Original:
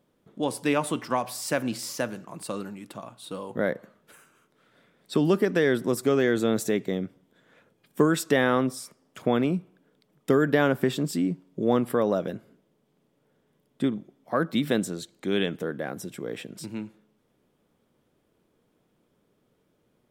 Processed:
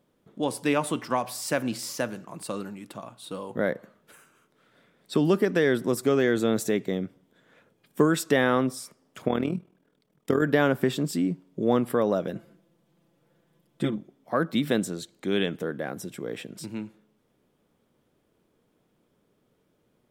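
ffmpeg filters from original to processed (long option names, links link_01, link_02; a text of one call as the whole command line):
ffmpeg -i in.wav -filter_complex "[0:a]asettb=1/sr,asplit=3[link_01][link_02][link_03];[link_01]atrim=end=9.284[link_04];[link_02]atrim=start=9.28:end=10.42,asetpts=PTS-STARTPTS,afade=type=in:duration=0.004:curve=qsin,afade=type=out:start_time=1.136:duration=0.004:curve=qsin,tremolo=f=40:d=0.75[link_05];[link_03]atrim=start=10.416[link_06];[link_04][link_05]acrossfade=duration=0.004:curve1=hsin:curve2=qsin[link_07];[link_07][link_06]acrossfade=duration=0.004:curve1=qsin:curve2=hsin,asettb=1/sr,asplit=3[link_08][link_09][link_10];[link_08]atrim=end=12.354[link_11];[link_09]atrim=start=12.35:end=13.96,asetpts=PTS-STARTPTS,afade=type=in:duration=0.004:curve=qsin,afade=type=out:start_time=1.606:duration=0.004:curve=qsin,aecho=1:1:5.9:0.87,atrim=end_sample=71001[link_12];[link_10]atrim=start=13.956[link_13];[link_11][link_12]acrossfade=duration=0.004:curve1=hsin:curve2=qsin[link_14];[link_14][link_13]acrossfade=duration=0.004:curve1=qsin:curve2=hsin" out.wav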